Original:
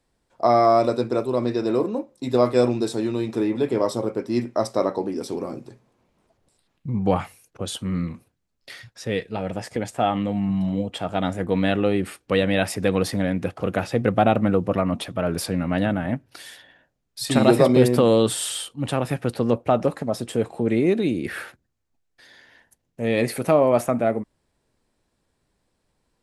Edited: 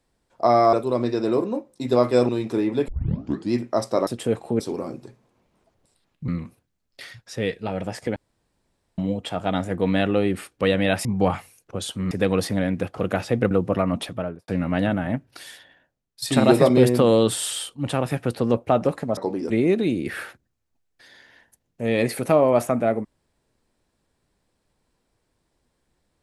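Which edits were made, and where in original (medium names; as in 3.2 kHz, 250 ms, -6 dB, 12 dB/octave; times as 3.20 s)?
0.73–1.15 s: delete
2.71–3.12 s: delete
3.71 s: tape start 0.64 s
4.90–5.23 s: swap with 20.16–20.69 s
6.91–7.97 s: move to 12.74 s
9.85–10.67 s: room tone
14.14–14.50 s: delete
15.06–15.47 s: studio fade out
16.46–17.21 s: fade out linear, to -10 dB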